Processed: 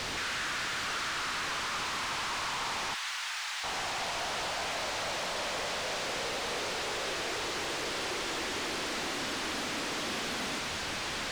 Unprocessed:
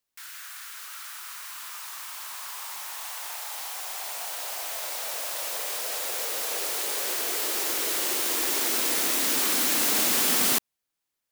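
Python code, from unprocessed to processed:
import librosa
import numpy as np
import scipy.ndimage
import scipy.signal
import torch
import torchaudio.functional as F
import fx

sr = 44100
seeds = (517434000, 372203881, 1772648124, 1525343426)

y = np.sign(x) * np.sqrt(np.mean(np.square(x)))
y = fx.air_absorb(y, sr, metres=130.0)
y = 10.0 ** (-31.0 / 20.0) * np.tanh(y / 10.0 ** (-31.0 / 20.0))
y = fx.cheby1_highpass(y, sr, hz=1600.0, order=2, at=(2.94, 3.64))
y = fx.doppler_dist(y, sr, depth_ms=0.37)
y = F.gain(torch.from_numpy(y), 3.5).numpy()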